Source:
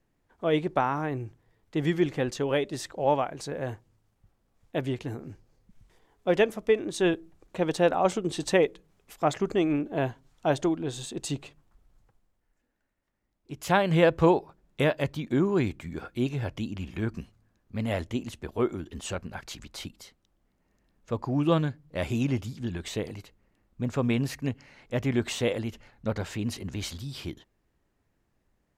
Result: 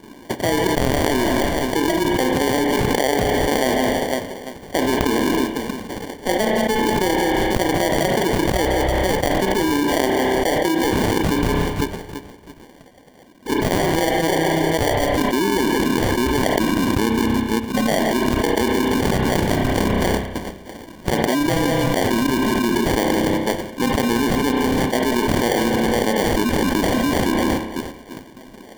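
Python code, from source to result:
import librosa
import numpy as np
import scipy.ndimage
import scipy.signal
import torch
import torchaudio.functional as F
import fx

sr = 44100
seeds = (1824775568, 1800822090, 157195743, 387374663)

p1 = fx.spec_quant(x, sr, step_db=30)
p2 = scipy.signal.sosfilt(scipy.signal.ellip(3, 1.0, 40, [230.0, 5500.0], 'bandpass', fs=sr, output='sos'), p1)
p3 = fx.peak_eq(p2, sr, hz=2800.0, db=13.5, octaves=0.51)
p4 = p3 + fx.echo_alternate(p3, sr, ms=167, hz=880.0, feedback_pct=54, wet_db=-13.5, dry=0)
p5 = fx.sample_hold(p4, sr, seeds[0], rate_hz=1300.0, jitter_pct=0)
p6 = fx.transient(p5, sr, attack_db=6, sustain_db=-2)
p7 = fx.rev_spring(p6, sr, rt60_s=1.1, pass_ms=(31,), chirp_ms=40, drr_db=12.5)
p8 = fx.env_flatten(p7, sr, amount_pct=100)
y = p8 * 10.0 ** (-6.0 / 20.0)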